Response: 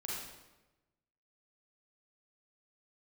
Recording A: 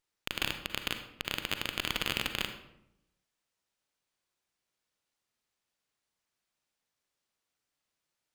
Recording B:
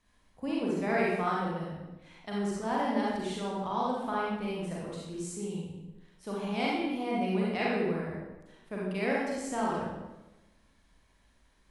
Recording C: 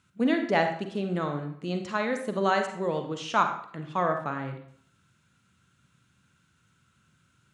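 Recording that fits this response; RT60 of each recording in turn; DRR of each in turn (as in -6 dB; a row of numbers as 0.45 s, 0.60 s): B; 0.80 s, 1.1 s, 0.60 s; 7.0 dB, -5.5 dB, 5.0 dB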